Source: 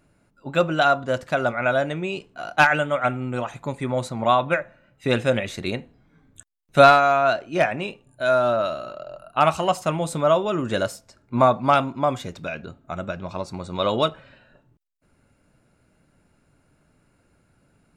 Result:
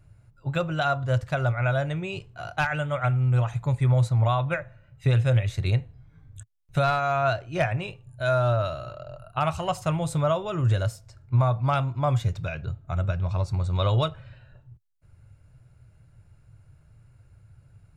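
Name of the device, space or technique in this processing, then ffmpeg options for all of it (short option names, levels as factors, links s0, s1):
car stereo with a boomy subwoofer: -af "lowshelf=f=160:t=q:w=3:g=12.5,alimiter=limit=0.316:level=0:latency=1:release=422,volume=0.668"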